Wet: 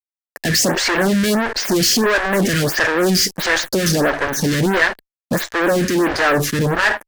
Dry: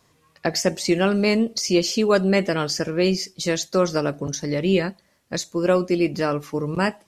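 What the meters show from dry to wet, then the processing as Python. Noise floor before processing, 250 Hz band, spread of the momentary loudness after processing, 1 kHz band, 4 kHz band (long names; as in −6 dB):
−62 dBFS, +3.0 dB, 4 LU, +7.5 dB, +7.5 dB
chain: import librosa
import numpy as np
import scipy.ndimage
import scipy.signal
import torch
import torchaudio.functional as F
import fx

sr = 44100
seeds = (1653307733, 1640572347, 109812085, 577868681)

y = fx.fuzz(x, sr, gain_db=42.0, gate_db=-48.0)
y = fx.peak_eq(y, sr, hz=1700.0, db=11.0, octaves=0.34)
y = fx.stagger_phaser(y, sr, hz=1.5)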